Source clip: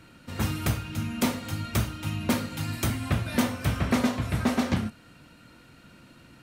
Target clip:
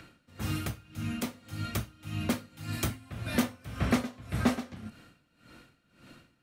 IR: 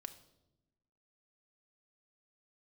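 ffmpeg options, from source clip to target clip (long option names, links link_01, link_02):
-filter_complex "[0:a]bandreject=frequency=940:width=15,acrossover=split=320|6000[link_01][link_02][link_03];[link_02]acompressor=mode=upward:threshold=-51dB:ratio=2.5[link_04];[link_01][link_04][link_03]amix=inputs=3:normalize=0,aeval=exprs='val(0)*pow(10,-20*(0.5-0.5*cos(2*PI*1.8*n/s))/20)':channel_layout=same"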